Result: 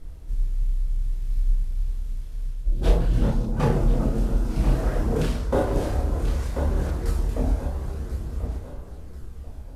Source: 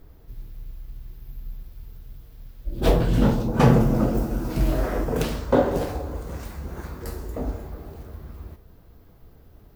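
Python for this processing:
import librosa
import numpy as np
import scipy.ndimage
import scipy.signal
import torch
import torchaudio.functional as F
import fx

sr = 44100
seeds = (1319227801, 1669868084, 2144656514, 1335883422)

p1 = fx.cvsd(x, sr, bps=64000)
p2 = fx.low_shelf(p1, sr, hz=78.0, db=12.0)
p3 = p2 + fx.echo_feedback(p2, sr, ms=1038, feedback_pct=37, wet_db=-12.0, dry=0)
p4 = fx.chorus_voices(p3, sr, voices=2, hz=0.29, base_ms=29, depth_ms=3.5, mix_pct=45)
y = fx.rider(p4, sr, range_db=4, speed_s=0.5)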